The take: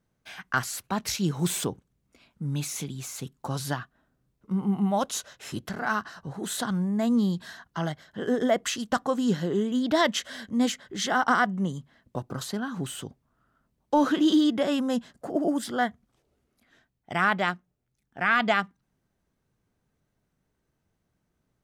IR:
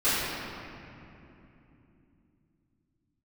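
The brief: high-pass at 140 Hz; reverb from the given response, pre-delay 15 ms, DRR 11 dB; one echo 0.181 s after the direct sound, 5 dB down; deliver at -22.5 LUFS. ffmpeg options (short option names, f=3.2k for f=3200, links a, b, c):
-filter_complex "[0:a]highpass=140,aecho=1:1:181:0.562,asplit=2[a][b];[1:a]atrim=start_sample=2205,adelay=15[c];[b][c]afir=irnorm=-1:irlink=0,volume=-26.5dB[d];[a][d]amix=inputs=2:normalize=0,volume=4dB"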